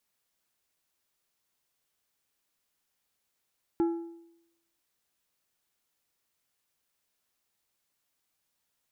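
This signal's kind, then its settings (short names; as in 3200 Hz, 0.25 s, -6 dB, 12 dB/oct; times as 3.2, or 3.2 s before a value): metal hit plate, lowest mode 336 Hz, decay 0.82 s, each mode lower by 12 dB, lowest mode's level -21 dB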